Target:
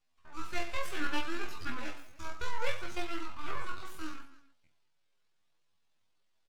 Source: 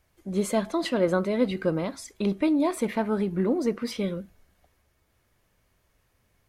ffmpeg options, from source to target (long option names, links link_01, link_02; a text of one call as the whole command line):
ffmpeg -i in.wav -filter_complex "[0:a]highpass=frequency=310:width=0.5412,highpass=frequency=310:width=1.3066,equalizer=frequency=500:width_type=q:width=4:gain=-5,equalizer=frequency=1100:width_type=q:width=4:gain=7,equalizer=frequency=2500:width_type=q:width=4:gain=-7,lowpass=frequency=4100:width=0.5412,lowpass=frequency=4100:width=1.3066,aeval=exprs='abs(val(0))':channel_layout=same,asplit=2[link_01][link_02];[link_02]aecho=0:1:20|52|103.2|185.1|316.2:0.631|0.398|0.251|0.158|0.1[link_03];[link_01][link_03]amix=inputs=2:normalize=0,flanger=delay=18:depth=5.1:speed=0.68,asetrate=70004,aresample=44100,atempo=0.629961,volume=-4.5dB" out.wav